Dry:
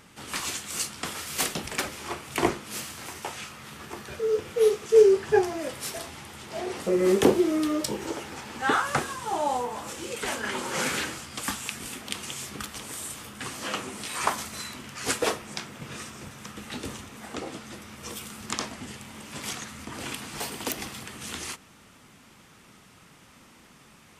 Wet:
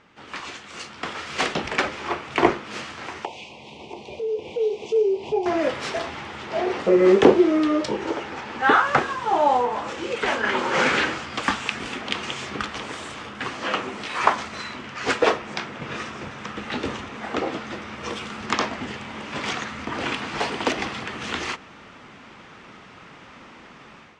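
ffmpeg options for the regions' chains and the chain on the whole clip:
-filter_complex "[0:a]asettb=1/sr,asplit=3[a][b][c];[a]atrim=end=3.254[d];[b]atrim=start=3.25:end=5.46,asetpts=PTS-STARTPTS,afade=t=in:d=0.004:c=qsin,afade=t=out:st=2.206:d=0.004:c=qsin,asuperstop=centerf=1500:order=8:qfactor=1.1,acompressor=threshold=-39dB:ratio=2:attack=3.2:release=140:knee=1:detection=peak,bass=f=250:g=-4,treble=f=4k:g=-2[e];[c]atrim=start=5.456[f];[d][e]acrossfade=d=0.004:c1=hsin:c2=qsin[g];[g][f]acrossfade=d=0.004:c1=qsin:c2=hsin,lowpass=f=6.8k:w=0.5412,lowpass=f=6.8k:w=1.3066,bass=f=250:g=-7,treble=f=4k:g=-13,dynaudnorm=f=800:g=3:m=11.5dB"

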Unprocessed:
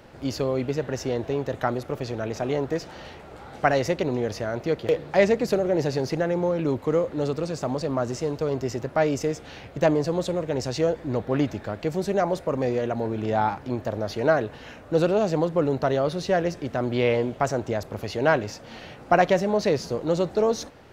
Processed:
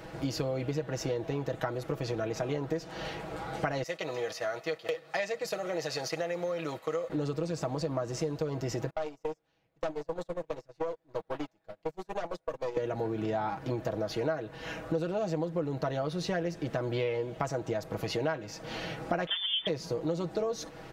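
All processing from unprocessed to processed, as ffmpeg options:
-filter_complex "[0:a]asettb=1/sr,asplit=3[a][b][c];[a]atrim=end=3.834[d];[b]atrim=start=3.83:end=7.1,asetpts=PTS-STARTPTS,afade=t=in:d=0.004:c=qsin,afade=t=out:st=3.266:d=0.004:c=qsin,agate=range=-7dB:threshold=-32dB:ratio=16:release=100:detection=peak,highpass=f=1.3k:p=1,aecho=1:1:1.6:0.34,atrim=end_sample=144207[e];[c]atrim=start=7.096[f];[d][e]acrossfade=d=0.004:c1=hsin:c2=qsin[g];[g][f]acrossfade=d=0.004:c1=qsin:c2=hsin,asettb=1/sr,asplit=3[h][i][j];[h]atrim=end=8.904[k];[i]atrim=start=8.9:end=12.77,asetpts=PTS-STARTPTS,afade=t=in:d=0.004:c=qsin,afade=t=out:st=3.866:d=0.004:c=qsin,aeval=exprs='(tanh(10*val(0)+0.75)-tanh(0.75))/10':c=same,acrossover=split=510|1200|2400[l][m][n][o];[l]acompressor=threshold=-44dB:ratio=3[p];[m]acompressor=threshold=-35dB:ratio=3[q];[n]acompressor=threshold=-58dB:ratio=3[r];[o]acompressor=threshold=-51dB:ratio=3[s];[p][q][r][s]amix=inputs=4:normalize=0,agate=range=-31dB:threshold=-37dB:ratio=16:release=100:detection=peak[t];[j]atrim=start=12.766[u];[k][t]acrossfade=d=0.004:c1=hsin:c2=qsin[v];[v][u]acrossfade=d=0.004:c1=qsin:c2=hsin,asettb=1/sr,asplit=3[w][x][y];[w]atrim=end=19.274[z];[x]atrim=start=19.27:end=19.67,asetpts=PTS-STARTPTS,afade=t=in:d=0.004:c=qsin,afade=t=out:st=0.396:d=0.004:c=qsin,lowpass=f=3.1k:t=q:w=0.5098,lowpass=f=3.1k:t=q:w=0.6013,lowpass=f=3.1k:t=q:w=0.9,lowpass=f=3.1k:t=q:w=2.563,afreqshift=-3700,acompressor=mode=upward:threshold=-29dB:ratio=2.5:attack=3.2:release=140:knee=2.83:detection=peak[aa];[y]atrim=start=19.666[ab];[z][aa]acrossfade=d=0.004:c1=hsin:c2=qsin[ac];[ac][ab]acrossfade=d=0.004:c1=qsin:c2=hsin,aecho=1:1:6.2:0.66,acompressor=threshold=-32dB:ratio=6,volume=2.5dB"

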